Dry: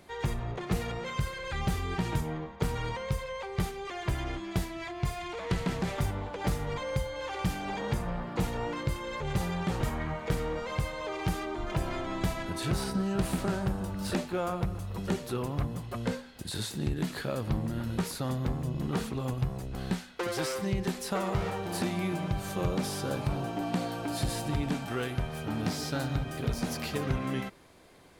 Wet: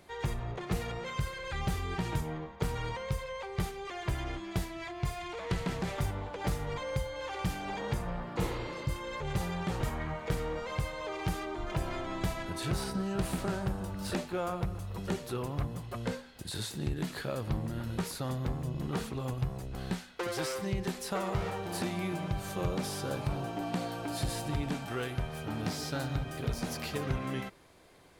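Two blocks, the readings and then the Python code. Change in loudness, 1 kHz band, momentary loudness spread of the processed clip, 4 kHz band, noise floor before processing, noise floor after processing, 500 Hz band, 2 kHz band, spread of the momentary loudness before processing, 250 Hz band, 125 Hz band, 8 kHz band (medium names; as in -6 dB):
-2.5 dB, -2.0 dB, 4 LU, -2.0 dB, -43 dBFS, -45 dBFS, -2.5 dB, -2.0 dB, 4 LU, -3.5 dB, -2.5 dB, -2.0 dB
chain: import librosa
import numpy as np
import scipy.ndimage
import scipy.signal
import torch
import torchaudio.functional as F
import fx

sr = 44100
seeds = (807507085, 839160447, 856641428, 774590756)

y = fx.spec_repair(x, sr, seeds[0], start_s=8.44, length_s=0.42, low_hz=220.0, high_hz=4800.0, source='both')
y = fx.peak_eq(y, sr, hz=230.0, db=-3.0, octaves=0.68)
y = F.gain(torch.from_numpy(y), -2.0).numpy()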